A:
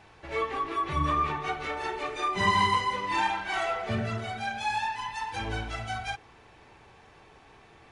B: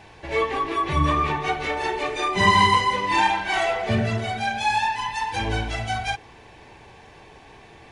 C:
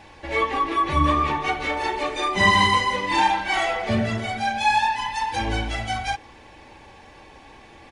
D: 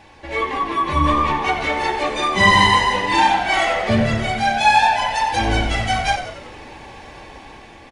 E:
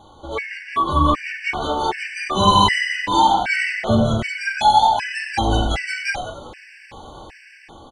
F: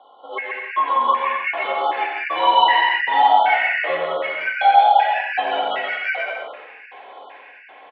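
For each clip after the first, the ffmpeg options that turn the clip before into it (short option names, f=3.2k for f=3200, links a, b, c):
-af "equalizer=f=1.3k:w=6.7:g=-11.5,volume=8dB"
-af "aecho=1:1:3.6:0.42"
-filter_complex "[0:a]asplit=2[a][b];[b]asplit=6[c][d][e][f][g][h];[c]adelay=91,afreqshift=-75,volume=-10.5dB[i];[d]adelay=182,afreqshift=-150,volume=-16dB[j];[e]adelay=273,afreqshift=-225,volume=-21.5dB[k];[f]adelay=364,afreqshift=-300,volume=-27dB[l];[g]adelay=455,afreqshift=-375,volume=-32.6dB[m];[h]adelay=546,afreqshift=-450,volume=-38.1dB[n];[i][j][k][l][m][n]amix=inputs=6:normalize=0[o];[a][o]amix=inputs=2:normalize=0,dynaudnorm=f=210:g=11:m=8.5dB"
-af "afftfilt=real='re*gt(sin(2*PI*1.3*pts/sr)*(1-2*mod(floor(b*sr/1024/1500),2)),0)':imag='im*gt(sin(2*PI*1.3*pts/sr)*(1-2*mod(floor(b*sr/1024/1500),2)),0)':win_size=1024:overlap=0.75,volume=1dB"
-af "highpass=f=550:t=q:w=0.5412,highpass=f=550:t=q:w=1.307,lowpass=f=3.1k:t=q:w=0.5176,lowpass=f=3.1k:t=q:w=0.7071,lowpass=f=3.1k:t=q:w=1.932,afreqshift=-54,aecho=1:1:130|214.5|269.4|305.1|328.3:0.631|0.398|0.251|0.158|0.1"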